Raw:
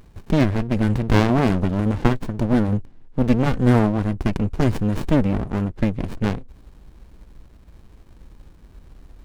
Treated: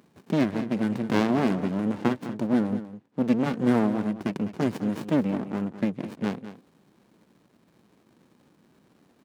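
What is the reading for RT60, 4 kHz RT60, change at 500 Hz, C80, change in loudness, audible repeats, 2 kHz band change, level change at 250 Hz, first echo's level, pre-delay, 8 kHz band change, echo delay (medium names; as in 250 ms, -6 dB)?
no reverb, no reverb, -5.0 dB, no reverb, -5.5 dB, 1, -6.0 dB, -4.0 dB, -13.0 dB, no reverb, no reading, 205 ms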